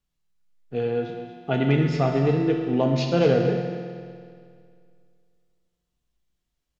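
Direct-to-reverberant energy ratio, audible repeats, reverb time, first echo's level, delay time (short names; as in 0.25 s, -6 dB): 1.0 dB, 1, 2.2 s, -12.5 dB, 0.232 s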